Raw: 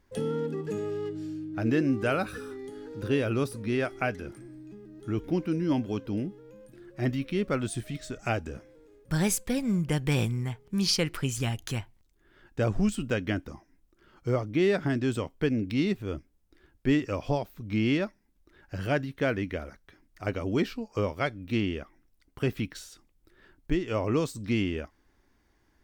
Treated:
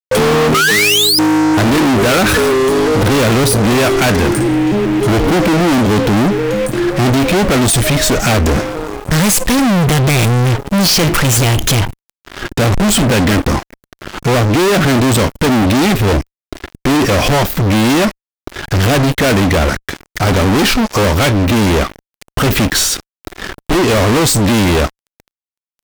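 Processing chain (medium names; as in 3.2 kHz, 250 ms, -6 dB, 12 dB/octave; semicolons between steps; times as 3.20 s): painted sound rise, 0.54–1.19 s, 1.2–5.2 kHz -29 dBFS; fuzz box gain 48 dB, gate -56 dBFS; waveshaping leveller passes 2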